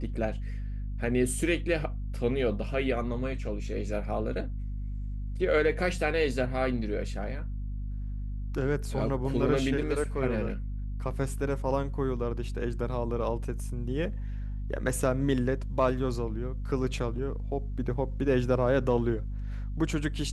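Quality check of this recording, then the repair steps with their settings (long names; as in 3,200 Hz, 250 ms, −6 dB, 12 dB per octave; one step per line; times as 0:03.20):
mains hum 50 Hz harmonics 5 −34 dBFS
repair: hum removal 50 Hz, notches 5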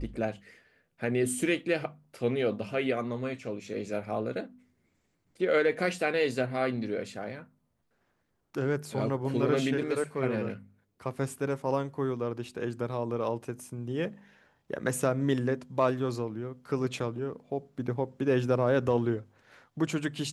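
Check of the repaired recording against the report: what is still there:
none of them is left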